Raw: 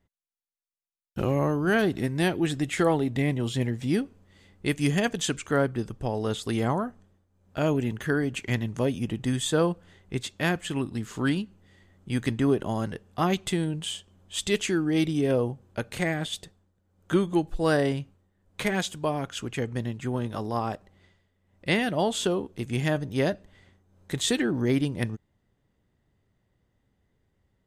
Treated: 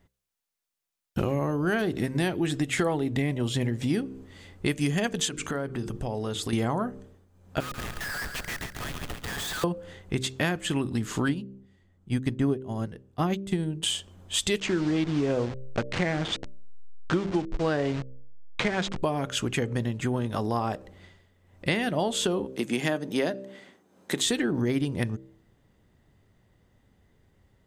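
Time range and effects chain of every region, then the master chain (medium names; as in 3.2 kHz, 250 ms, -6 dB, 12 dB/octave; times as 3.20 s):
5.28–6.53 s: hum notches 50/100/150/200/250/300/350/400/450 Hz + compression 4:1, threshold -36 dBFS
7.60–9.64 s: rippled Chebyshev high-pass 1.2 kHz, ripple 9 dB + Schmitt trigger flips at -47 dBFS + feedback delay 138 ms, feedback 52%, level -8 dB
11.28–13.83 s: bass shelf 360 Hz +7 dB + upward expansion 2.5:1, over -28 dBFS
14.60–19.03 s: send-on-delta sampling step -31.5 dBFS + Bessel low-pass 4.9 kHz, order 8
22.47–24.26 s: de-esser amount 45% + high-pass 190 Hz 24 dB/octave
whole clip: de-hum 65.2 Hz, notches 9; compression 4:1, threshold -33 dBFS; trim +8.5 dB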